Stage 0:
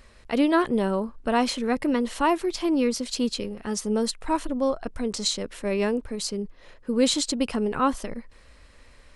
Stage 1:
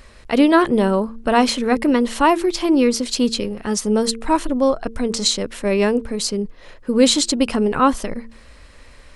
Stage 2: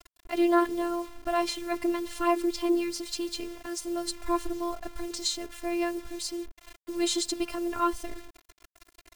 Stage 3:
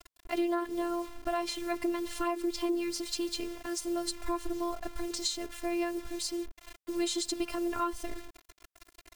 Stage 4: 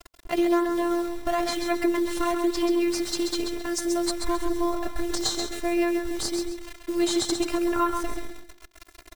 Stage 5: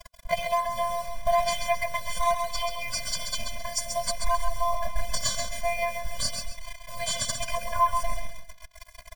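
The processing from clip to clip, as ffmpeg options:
-af "bandreject=f=113.9:t=h:w=4,bandreject=f=227.8:t=h:w=4,bandreject=f=341.7:t=h:w=4,bandreject=f=455.6:t=h:w=4,volume=2.37"
-af "acrusher=bits=5:mix=0:aa=0.000001,afftfilt=real='hypot(re,im)*cos(PI*b)':imag='0':win_size=512:overlap=0.75,volume=0.398"
-af "acompressor=threshold=0.0447:ratio=6"
-filter_complex "[0:a]asplit=2[s0][s1];[s1]acrusher=samples=10:mix=1:aa=0.000001:lfo=1:lforange=16:lforate=1,volume=0.335[s2];[s0][s2]amix=inputs=2:normalize=0,aecho=1:1:133|266|399|532:0.501|0.145|0.0421|0.0122,volume=1.68"
-af "afftfilt=real='re*eq(mod(floor(b*sr/1024/240),2),0)':imag='im*eq(mod(floor(b*sr/1024/240),2),0)':win_size=1024:overlap=0.75,volume=1.78"

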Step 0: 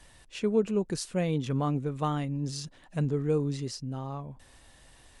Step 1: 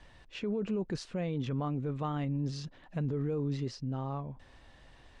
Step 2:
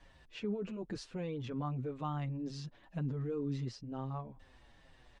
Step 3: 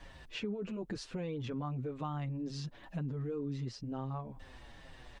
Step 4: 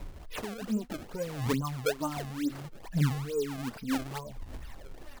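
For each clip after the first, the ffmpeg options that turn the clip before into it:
-af "lowpass=5200,aemphasis=mode=reproduction:type=cd,alimiter=level_in=1.26:limit=0.0631:level=0:latency=1:release=15,volume=0.794"
-filter_complex "[0:a]asplit=2[s0][s1];[s1]adelay=6.8,afreqshift=-2.1[s2];[s0][s2]amix=inputs=2:normalize=1,volume=0.841"
-af "acompressor=threshold=0.00398:ratio=2.5,volume=2.66"
-filter_complex "[0:a]aphaser=in_gain=1:out_gain=1:delay=4.7:decay=0.74:speed=0.66:type=triangular,acrossover=split=4700[s0][s1];[s1]acompressor=threshold=0.002:ratio=4:attack=1:release=60[s2];[s0][s2]amix=inputs=2:normalize=0,acrusher=samples=27:mix=1:aa=0.000001:lfo=1:lforange=43.2:lforate=2.3,volume=1.19"

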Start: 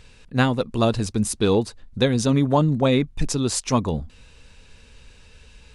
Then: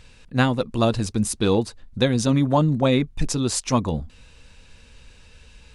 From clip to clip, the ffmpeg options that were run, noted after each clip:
-af "bandreject=f=420:w=12"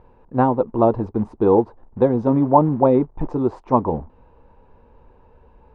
-af "acrusher=bits=5:mode=log:mix=0:aa=0.000001,lowpass=f=910:t=q:w=4.1,equalizer=f=380:t=o:w=1.1:g=9.5,volume=0.668"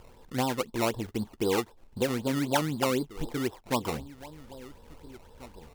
-filter_complex "[0:a]acompressor=threshold=0.00794:ratio=1.5,asplit=2[s0][s1];[s1]adelay=1691,volume=0.126,highshelf=f=4000:g=-38[s2];[s0][s2]amix=inputs=2:normalize=0,acrusher=samples=19:mix=1:aa=0.000001:lfo=1:lforange=19:lforate=3.9,volume=0.841"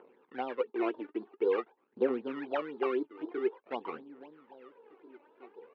-af "aphaser=in_gain=1:out_gain=1:delay=3.5:decay=0.6:speed=0.48:type=triangular,highpass=f=290:w=0.5412,highpass=f=290:w=1.3066,equalizer=f=410:t=q:w=4:g=5,equalizer=f=630:t=q:w=4:g=-6,equalizer=f=960:t=q:w=4:g=-3,equalizer=f=2000:t=q:w=4:g=-4,lowpass=f=2300:w=0.5412,lowpass=f=2300:w=1.3066,volume=0.562"

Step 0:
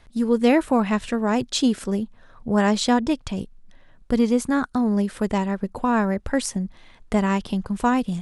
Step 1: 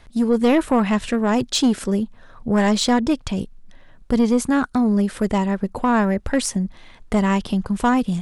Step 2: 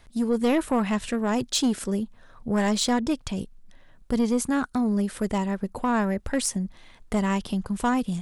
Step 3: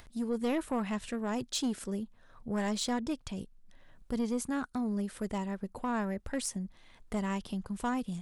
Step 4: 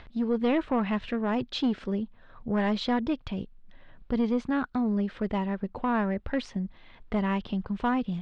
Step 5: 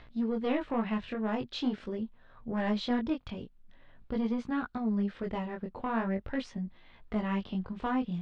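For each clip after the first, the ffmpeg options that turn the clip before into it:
-af "asoftclip=type=tanh:threshold=0.188,volume=1.68"
-af "highshelf=f=7700:g=8.5,volume=0.501"
-af "acompressor=mode=upward:threshold=0.0126:ratio=2.5,volume=0.355"
-af "lowpass=f=3700:w=0.5412,lowpass=f=3700:w=1.3066,volume=2"
-af "flanger=delay=17:depth=6.2:speed=0.44,volume=0.841"

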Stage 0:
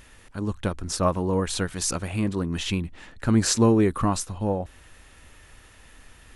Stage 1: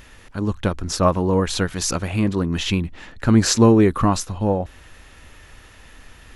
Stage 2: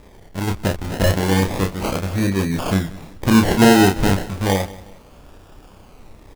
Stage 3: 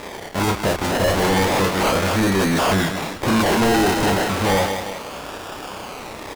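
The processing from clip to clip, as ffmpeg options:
-af "equalizer=f=9000:w=2.6:g=-8.5,volume=1.88"
-filter_complex "[0:a]acrusher=samples=30:mix=1:aa=0.000001:lfo=1:lforange=18:lforate=0.32,asplit=2[s0][s1];[s1]adelay=31,volume=0.562[s2];[s0][s2]amix=inputs=2:normalize=0,aecho=1:1:183|366|549:0.112|0.0393|0.0137"
-filter_complex "[0:a]asplit=2[s0][s1];[s1]highpass=f=720:p=1,volume=39.8,asoftclip=type=tanh:threshold=0.841[s2];[s0][s2]amix=inputs=2:normalize=0,lowpass=f=7400:p=1,volume=0.501,asoftclip=type=tanh:threshold=0.398,volume=0.531"

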